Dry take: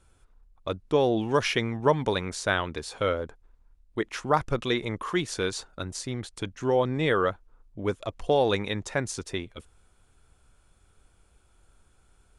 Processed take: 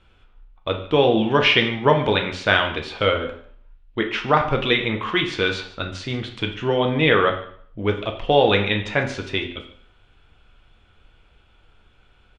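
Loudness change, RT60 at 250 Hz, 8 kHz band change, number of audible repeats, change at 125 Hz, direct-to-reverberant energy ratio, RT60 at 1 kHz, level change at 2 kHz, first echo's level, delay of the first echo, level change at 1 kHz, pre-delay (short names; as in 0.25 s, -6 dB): +7.5 dB, 0.55 s, n/a, 1, +6.0 dB, 3.0 dB, 0.55 s, +10.5 dB, -19.0 dB, 0.147 s, +7.0 dB, 5 ms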